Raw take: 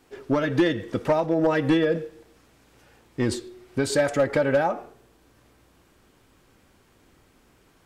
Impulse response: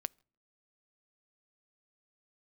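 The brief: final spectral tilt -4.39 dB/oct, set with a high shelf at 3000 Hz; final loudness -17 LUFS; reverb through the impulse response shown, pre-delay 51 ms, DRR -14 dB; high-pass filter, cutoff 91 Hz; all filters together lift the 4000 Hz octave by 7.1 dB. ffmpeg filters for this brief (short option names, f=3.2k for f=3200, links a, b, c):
-filter_complex "[0:a]highpass=91,highshelf=f=3k:g=7.5,equalizer=f=4k:t=o:g=3,asplit=2[a][b];[1:a]atrim=start_sample=2205,adelay=51[c];[b][c]afir=irnorm=-1:irlink=0,volume=15.5dB[d];[a][d]amix=inputs=2:normalize=0,volume=-8dB"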